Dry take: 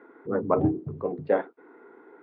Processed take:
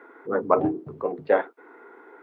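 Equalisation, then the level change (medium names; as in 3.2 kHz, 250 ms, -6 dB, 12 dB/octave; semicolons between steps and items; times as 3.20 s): high-pass 710 Hz 6 dB/octave; +7.5 dB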